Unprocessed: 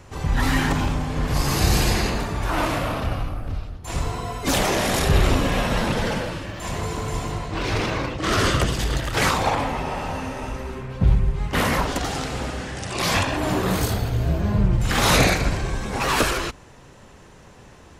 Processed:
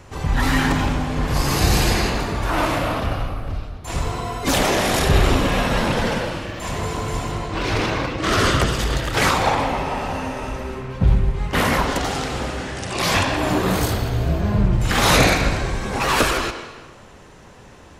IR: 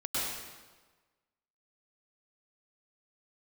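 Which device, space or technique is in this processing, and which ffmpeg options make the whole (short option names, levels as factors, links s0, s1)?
filtered reverb send: -filter_complex "[0:a]asplit=2[s0][s1];[s1]highpass=210,lowpass=5700[s2];[1:a]atrim=start_sample=2205[s3];[s2][s3]afir=irnorm=-1:irlink=0,volume=0.188[s4];[s0][s4]amix=inputs=2:normalize=0,volume=1.19"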